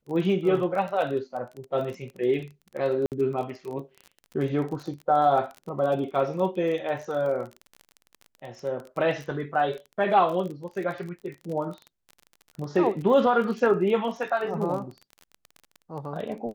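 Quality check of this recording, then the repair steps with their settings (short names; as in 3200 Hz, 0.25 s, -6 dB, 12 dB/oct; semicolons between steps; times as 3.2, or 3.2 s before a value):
crackle 28/s -33 dBFS
3.06–3.12 gap 58 ms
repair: de-click; interpolate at 3.06, 58 ms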